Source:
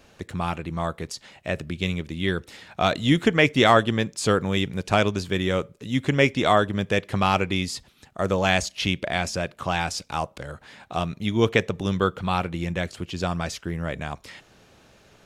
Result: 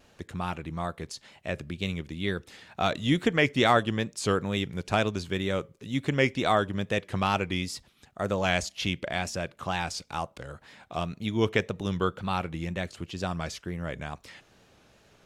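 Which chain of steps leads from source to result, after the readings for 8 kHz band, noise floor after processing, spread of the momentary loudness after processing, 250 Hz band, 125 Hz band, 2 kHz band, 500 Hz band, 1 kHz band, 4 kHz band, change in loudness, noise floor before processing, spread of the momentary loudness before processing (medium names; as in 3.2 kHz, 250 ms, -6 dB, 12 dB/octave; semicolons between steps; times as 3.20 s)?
-5.0 dB, -62 dBFS, 13 LU, -5.0 dB, -5.0 dB, -5.0 dB, -5.0 dB, -5.0 dB, -5.0 dB, -5.0 dB, -57 dBFS, 13 LU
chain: wow and flutter 73 cents; trim -5 dB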